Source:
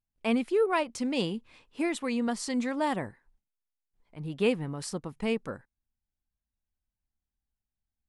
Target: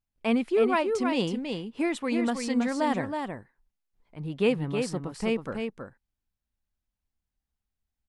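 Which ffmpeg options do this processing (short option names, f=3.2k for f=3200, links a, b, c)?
-filter_complex "[0:a]highshelf=f=5.7k:g=-6.5,asplit=2[a][b];[b]aecho=0:1:322:0.531[c];[a][c]amix=inputs=2:normalize=0,volume=2dB"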